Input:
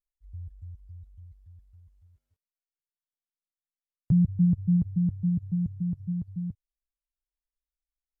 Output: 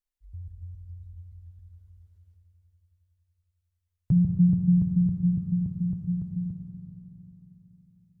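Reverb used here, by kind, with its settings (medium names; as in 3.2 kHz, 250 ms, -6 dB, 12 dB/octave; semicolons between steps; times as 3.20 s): Schroeder reverb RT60 4 s, combs from 26 ms, DRR 3 dB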